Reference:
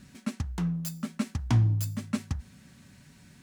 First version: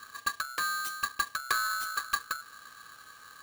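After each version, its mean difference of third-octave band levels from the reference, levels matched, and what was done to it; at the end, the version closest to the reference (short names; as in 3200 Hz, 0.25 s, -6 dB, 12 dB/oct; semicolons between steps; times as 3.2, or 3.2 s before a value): 13.5 dB: HPF 72 Hz 24 dB/oct; compressor 3:1, threshold -33 dBFS, peak gain reduction 10.5 dB; bell 300 Hz +10 dB 0.86 oct; polarity switched at an audio rate 1400 Hz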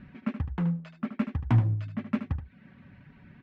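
6.0 dB: reverb removal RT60 0.63 s; LPF 2500 Hz 24 dB/oct; in parallel at -11.5 dB: wavefolder -32 dBFS; on the sum: echo 76 ms -10 dB; gain +1.5 dB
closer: second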